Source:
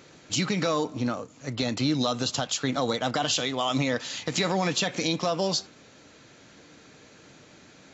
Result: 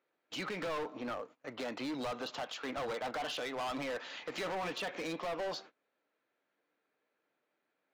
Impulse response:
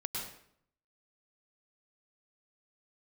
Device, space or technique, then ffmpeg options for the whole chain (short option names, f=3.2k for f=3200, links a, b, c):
walkie-talkie: -af "highpass=430,lowpass=2.2k,asoftclip=type=hard:threshold=-31.5dB,agate=range=-23dB:threshold=-49dB:ratio=16:detection=peak,volume=-3dB"